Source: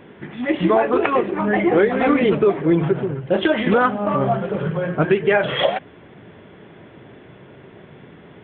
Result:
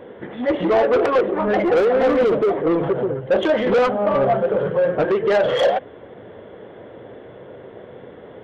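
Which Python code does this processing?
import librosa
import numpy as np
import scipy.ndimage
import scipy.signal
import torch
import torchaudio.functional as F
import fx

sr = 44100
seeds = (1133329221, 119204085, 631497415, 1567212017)

y = fx.clip_hard(x, sr, threshold_db=-13.5, at=(1.58, 2.5))
y = fx.graphic_eq_31(y, sr, hz=(160, 500, 2500), db=(-8, 10, -8))
y = 10.0 ** (-16.0 / 20.0) * np.tanh(y / 10.0 ** (-16.0 / 20.0))
y = fx.peak_eq(y, sr, hz=640.0, db=5.0, octaves=1.2)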